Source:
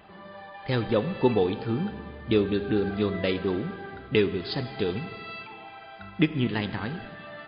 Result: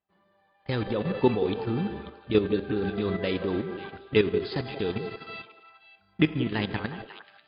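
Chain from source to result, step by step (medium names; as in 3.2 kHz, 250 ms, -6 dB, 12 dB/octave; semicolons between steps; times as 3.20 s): level held to a coarse grid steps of 10 dB; expander -37 dBFS; repeats whose band climbs or falls 179 ms, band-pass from 450 Hz, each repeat 1.4 oct, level -6.5 dB; trim +3 dB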